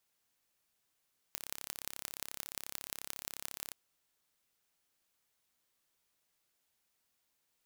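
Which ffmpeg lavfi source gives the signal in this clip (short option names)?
-f lavfi -i "aevalsrc='0.316*eq(mod(n,1289),0)*(0.5+0.5*eq(mod(n,7734),0))':d=2.38:s=44100"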